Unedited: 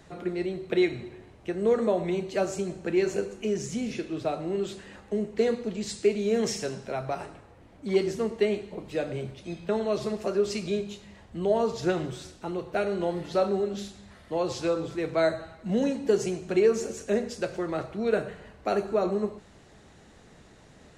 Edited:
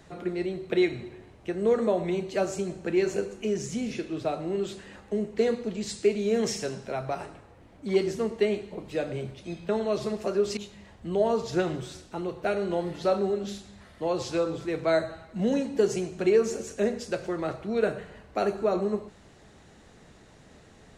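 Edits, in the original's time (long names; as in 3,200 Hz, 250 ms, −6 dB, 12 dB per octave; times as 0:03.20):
0:10.57–0:10.87: remove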